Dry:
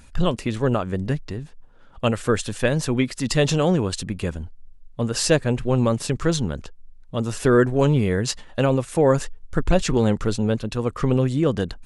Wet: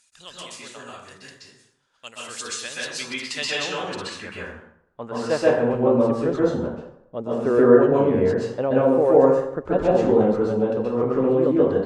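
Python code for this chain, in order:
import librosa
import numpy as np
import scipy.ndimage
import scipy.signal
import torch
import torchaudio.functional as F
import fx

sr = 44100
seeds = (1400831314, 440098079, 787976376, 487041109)

y = fx.filter_sweep_bandpass(x, sr, from_hz=6700.0, to_hz=550.0, start_s=2.12, end_s=5.86, q=1.1)
y = fx.rev_plate(y, sr, seeds[0], rt60_s=0.74, hf_ratio=0.6, predelay_ms=115, drr_db=-6.5)
y = F.gain(torch.from_numpy(y), -1.5).numpy()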